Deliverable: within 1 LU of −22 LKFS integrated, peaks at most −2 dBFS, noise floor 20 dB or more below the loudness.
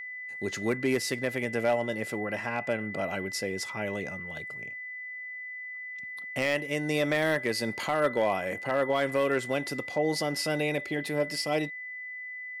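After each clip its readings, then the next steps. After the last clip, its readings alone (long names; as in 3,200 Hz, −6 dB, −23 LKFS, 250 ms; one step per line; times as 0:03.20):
share of clipped samples 0.3%; peaks flattened at −18.0 dBFS; interfering tone 2,000 Hz; level of the tone −37 dBFS; integrated loudness −30.5 LKFS; sample peak −18.0 dBFS; target loudness −22.0 LKFS
→ clipped peaks rebuilt −18 dBFS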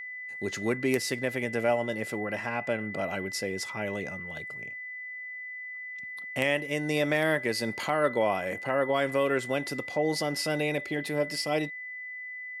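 share of clipped samples 0.0%; interfering tone 2,000 Hz; level of the tone −37 dBFS
→ notch filter 2,000 Hz, Q 30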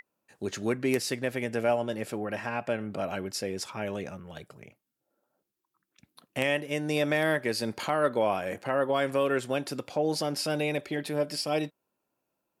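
interfering tone none found; integrated loudness −30.0 LKFS; sample peak −9.0 dBFS; target loudness −22.0 LKFS
→ level +8 dB
brickwall limiter −2 dBFS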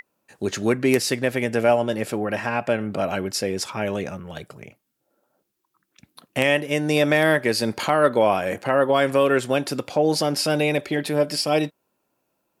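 integrated loudness −22.0 LKFS; sample peak −2.0 dBFS; background noise floor −75 dBFS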